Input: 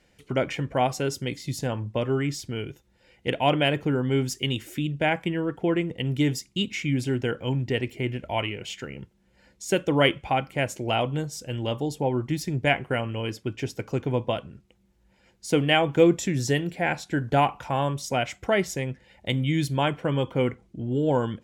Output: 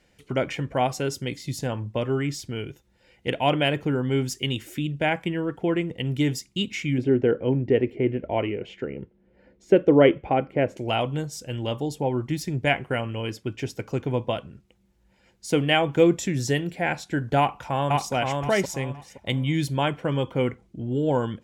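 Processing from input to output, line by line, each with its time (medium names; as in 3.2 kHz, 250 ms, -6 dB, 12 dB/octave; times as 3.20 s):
6.98–10.77 s: FFT filter 130 Hz 0 dB, 310 Hz +7 dB, 450 Hz +9 dB, 920 Hz -2 dB, 2.1 kHz -3 dB, 9.1 kHz -24 dB
17.38–18.13 s: echo throw 520 ms, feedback 25%, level -2.5 dB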